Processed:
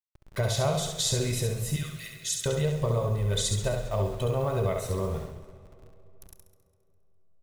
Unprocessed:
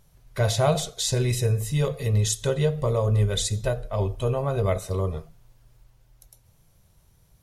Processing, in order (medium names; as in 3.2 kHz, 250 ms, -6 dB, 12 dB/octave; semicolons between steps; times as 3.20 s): send-on-delta sampling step -45 dBFS; compression, threshold -24 dBFS, peak gain reduction 8 dB; 1.76–2.46 s: steep high-pass 1.3 kHz 48 dB/octave; feedback delay 68 ms, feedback 37%, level -5 dB; algorithmic reverb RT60 3.6 s, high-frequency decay 0.7×, pre-delay 5 ms, DRR 17.5 dB; modulated delay 203 ms, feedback 35%, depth 124 cents, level -16.5 dB